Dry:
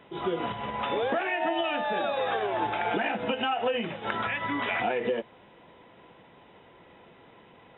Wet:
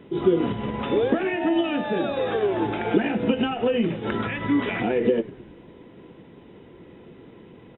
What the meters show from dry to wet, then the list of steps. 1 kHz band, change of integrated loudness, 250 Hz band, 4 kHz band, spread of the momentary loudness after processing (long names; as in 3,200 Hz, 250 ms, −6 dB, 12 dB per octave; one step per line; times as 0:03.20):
−2.0 dB, +5.0 dB, +12.0 dB, 0.0 dB, 5 LU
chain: low shelf with overshoot 510 Hz +10 dB, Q 1.5
echo with shifted repeats 103 ms, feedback 56%, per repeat −52 Hz, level −19 dB